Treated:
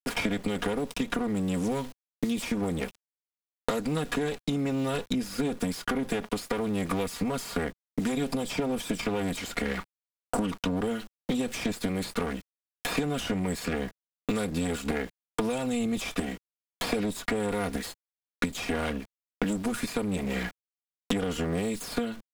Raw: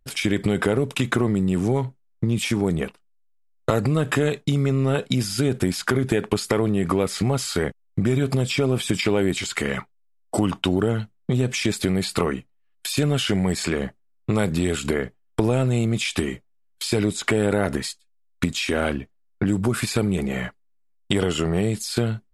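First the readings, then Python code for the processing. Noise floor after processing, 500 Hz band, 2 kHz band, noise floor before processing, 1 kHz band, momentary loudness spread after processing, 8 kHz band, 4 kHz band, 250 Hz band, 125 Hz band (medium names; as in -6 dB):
under -85 dBFS, -7.5 dB, -6.5 dB, -63 dBFS, -4.0 dB, 5 LU, -8.0 dB, -8.0 dB, -6.0 dB, -13.0 dB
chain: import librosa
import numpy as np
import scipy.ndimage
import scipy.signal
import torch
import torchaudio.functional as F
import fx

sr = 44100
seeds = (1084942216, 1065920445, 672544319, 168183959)

y = fx.lower_of_two(x, sr, delay_ms=4.2)
y = np.where(np.abs(y) >= 10.0 ** (-41.5 / 20.0), y, 0.0)
y = fx.band_squash(y, sr, depth_pct=100)
y = y * librosa.db_to_amplitude(-8.0)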